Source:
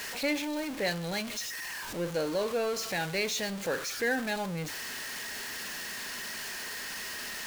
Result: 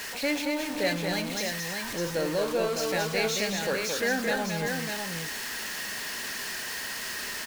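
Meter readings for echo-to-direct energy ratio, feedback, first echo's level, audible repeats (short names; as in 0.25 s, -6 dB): -1.5 dB, no steady repeat, -4.5 dB, 2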